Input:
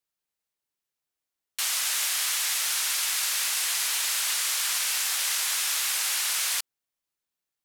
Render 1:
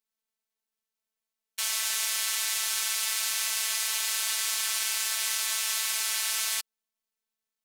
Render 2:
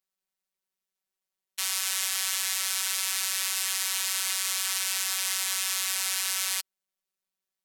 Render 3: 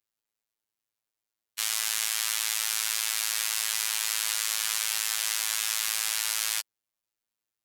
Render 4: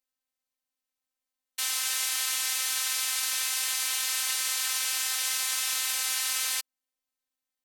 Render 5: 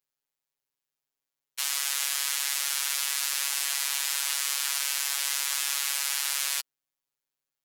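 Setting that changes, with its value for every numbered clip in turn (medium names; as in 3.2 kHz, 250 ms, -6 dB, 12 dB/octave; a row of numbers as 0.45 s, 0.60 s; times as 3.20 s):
robot voice, frequency: 220 Hz, 190 Hz, 110 Hz, 260 Hz, 140 Hz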